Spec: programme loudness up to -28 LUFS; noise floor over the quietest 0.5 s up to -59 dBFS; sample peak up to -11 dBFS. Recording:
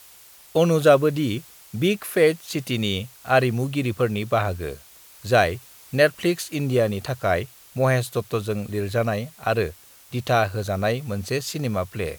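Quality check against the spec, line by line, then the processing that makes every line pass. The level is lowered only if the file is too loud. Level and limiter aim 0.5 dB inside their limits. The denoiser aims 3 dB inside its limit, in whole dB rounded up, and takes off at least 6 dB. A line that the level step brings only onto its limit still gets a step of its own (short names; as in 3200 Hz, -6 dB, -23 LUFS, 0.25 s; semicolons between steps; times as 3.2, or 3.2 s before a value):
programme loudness -23.0 LUFS: fail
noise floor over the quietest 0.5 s -49 dBFS: fail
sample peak -3.5 dBFS: fail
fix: denoiser 8 dB, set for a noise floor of -49 dBFS; gain -5.5 dB; limiter -11.5 dBFS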